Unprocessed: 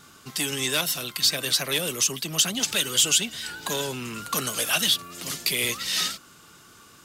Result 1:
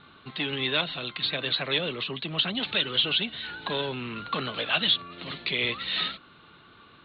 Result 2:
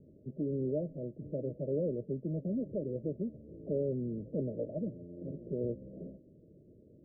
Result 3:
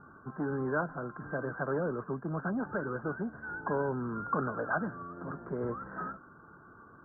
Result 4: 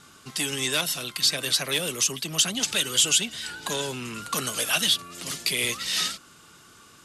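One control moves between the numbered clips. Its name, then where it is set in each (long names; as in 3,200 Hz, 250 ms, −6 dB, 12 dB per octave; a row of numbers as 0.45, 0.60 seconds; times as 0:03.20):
Chebyshev low-pass filter, frequency: 4,200, 620, 1,600, 12,000 Hertz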